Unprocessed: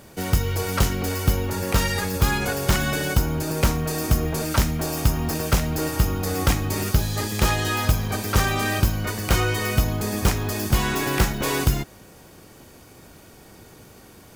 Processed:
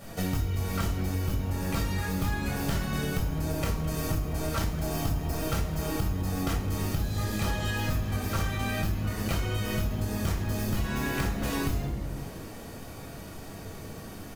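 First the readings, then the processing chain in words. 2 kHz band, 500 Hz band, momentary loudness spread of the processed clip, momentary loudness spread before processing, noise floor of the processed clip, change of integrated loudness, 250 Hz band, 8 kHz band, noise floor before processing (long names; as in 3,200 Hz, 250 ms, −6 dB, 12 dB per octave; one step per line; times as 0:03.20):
−9.0 dB, −8.0 dB, 12 LU, 3 LU, −42 dBFS, −7.5 dB, −5.0 dB, −10.5 dB, −48 dBFS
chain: rectangular room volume 680 cubic metres, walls furnished, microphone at 6.4 metres
downward compressor 6 to 1, threshold −22 dBFS, peak gain reduction 17.5 dB
on a send: echo with shifted repeats 211 ms, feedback 62%, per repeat +140 Hz, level −17.5 dB
on the sum: level −5 dB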